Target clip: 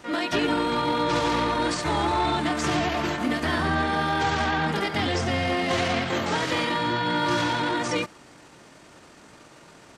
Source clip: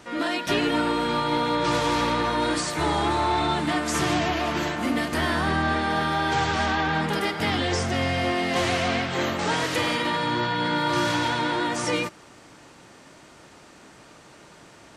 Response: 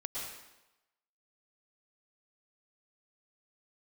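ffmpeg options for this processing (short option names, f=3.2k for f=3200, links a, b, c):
-filter_complex "[0:a]atempo=1.5,acrossover=split=8200[a][b];[b]acompressor=threshold=-54dB:ratio=4:attack=1:release=60[c];[a][c]amix=inputs=2:normalize=0"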